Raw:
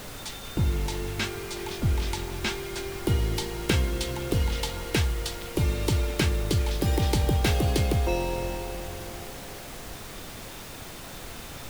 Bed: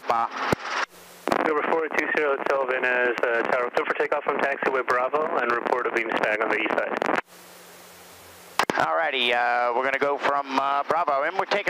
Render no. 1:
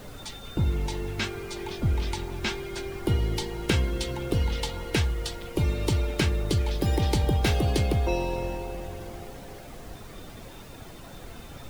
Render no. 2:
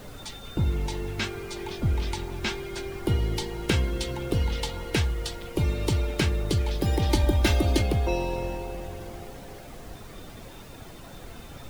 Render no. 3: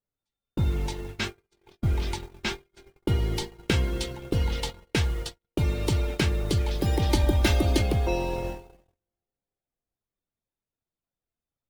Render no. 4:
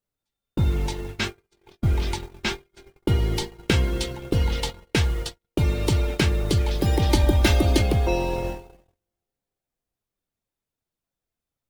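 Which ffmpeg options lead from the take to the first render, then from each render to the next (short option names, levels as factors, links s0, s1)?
-af "afftdn=nr=9:nf=-41"
-filter_complex "[0:a]asettb=1/sr,asplit=3[s0][s1][s2];[s0]atrim=end=7.094[s3];[s1]atrim=start=7.09:end=7.82,asetpts=PTS-STARTPTS,afade=t=in:d=0.004:c=qsin,afade=t=out:st=0.726:d=0.004:c=qsin,aecho=1:1:3.3:0.78,atrim=end_sample=32193[s4];[s2]atrim=start=7.816[s5];[s3][s4]acrossfade=d=0.004:c1=hsin:c2=qsin[s6];[s6][s5]acrossfade=d=0.004:c1=qsin:c2=hsin"
-af "agate=range=0.00282:threshold=0.0316:ratio=16:detection=peak"
-af "volume=1.5"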